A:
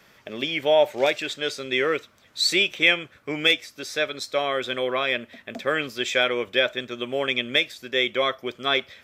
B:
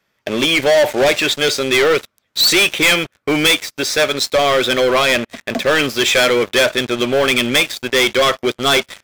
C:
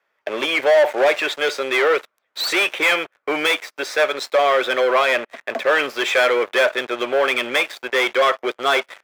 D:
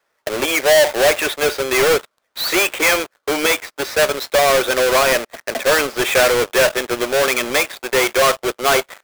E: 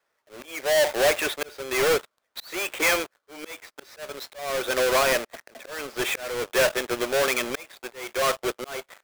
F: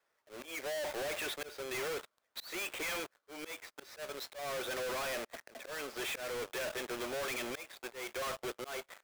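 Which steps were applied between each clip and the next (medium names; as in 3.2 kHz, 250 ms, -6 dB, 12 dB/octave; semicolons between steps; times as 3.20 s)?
waveshaping leveller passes 5; trim -2.5 dB
three-band isolator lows -24 dB, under 400 Hz, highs -13 dB, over 2.4 kHz
square wave that keeps the level; trim -1.5 dB
slow attack 439 ms; trim -6.5 dB
saturation -32 dBFS, distortion -6 dB; trim -4.5 dB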